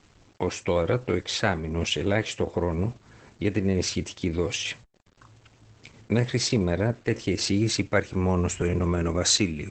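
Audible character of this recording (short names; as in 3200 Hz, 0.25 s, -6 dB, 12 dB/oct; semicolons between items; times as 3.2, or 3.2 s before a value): a quantiser's noise floor 10-bit, dither none; Opus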